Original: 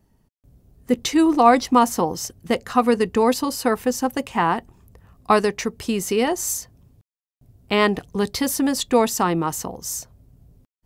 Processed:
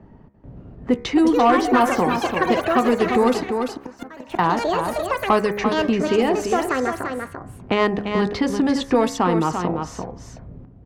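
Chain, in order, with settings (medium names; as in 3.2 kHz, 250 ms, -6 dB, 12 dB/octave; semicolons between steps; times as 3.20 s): level-controlled noise filter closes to 1.8 kHz, open at -12 dBFS; ever faster or slower copies 566 ms, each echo +7 st, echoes 3, each echo -6 dB; treble shelf 3.4 kHz -9.5 dB; in parallel at +1 dB: compression 10:1, threshold -28 dBFS, peak gain reduction 19 dB; on the sum: saturation -6 dBFS, distortion -20 dB; 3.41–4.39 s: inverted gate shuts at -15 dBFS, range -27 dB; de-hum 68.57 Hz, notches 36; on a send: delay 342 ms -8 dB; on the sum: three bands compressed up and down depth 40%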